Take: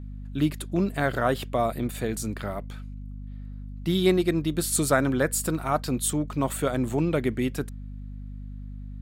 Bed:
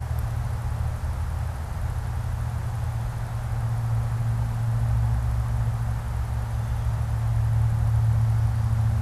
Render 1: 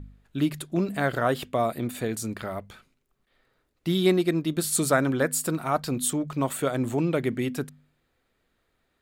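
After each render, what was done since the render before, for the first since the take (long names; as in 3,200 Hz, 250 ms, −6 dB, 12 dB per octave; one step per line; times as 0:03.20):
hum removal 50 Hz, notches 5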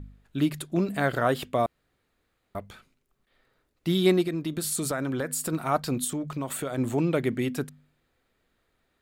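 0:01.66–0:02.55: fill with room tone
0:04.23–0:05.53: downward compressor, threshold −25 dBFS
0:06.04–0:06.78: downward compressor 5 to 1, threshold −27 dBFS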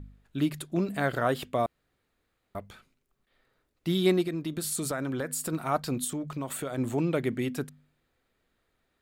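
level −2.5 dB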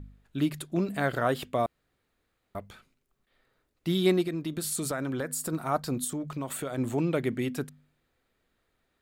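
0:05.26–0:06.20: parametric band 2,700 Hz −5 dB 0.9 octaves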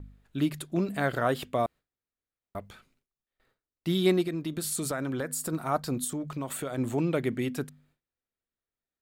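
noise gate with hold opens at −59 dBFS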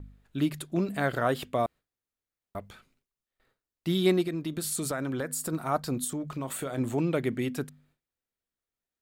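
0:06.28–0:06.82: double-tracking delay 30 ms −13 dB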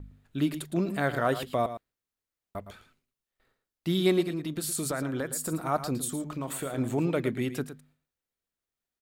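single-tap delay 112 ms −11.5 dB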